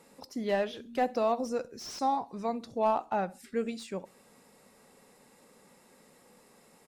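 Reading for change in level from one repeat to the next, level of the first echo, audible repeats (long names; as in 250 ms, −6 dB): −10.0 dB, −22.0 dB, 2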